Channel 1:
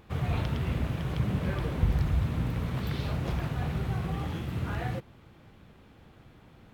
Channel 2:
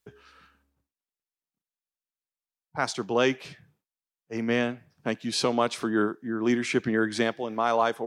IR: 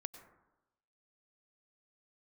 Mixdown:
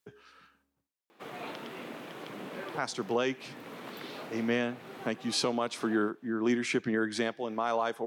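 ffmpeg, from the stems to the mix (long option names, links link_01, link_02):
-filter_complex "[0:a]highpass=frequency=270:width=0.5412,highpass=frequency=270:width=1.3066,adelay=1100,volume=-3dB[link_01];[1:a]highpass=120,volume=-2dB,asplit=2[link_02][link_03];[link_03]apad=whole_len=345567[link_04];[link_01][link_04]sidechaincompress=threshold=-31dB:ratio=8:attack=9.6:release=477[link_05];[link_05][link_02]amix=inputs=2:normalize=0,alimiter=limit=-18.5dB:level=0:latency=1:release=214"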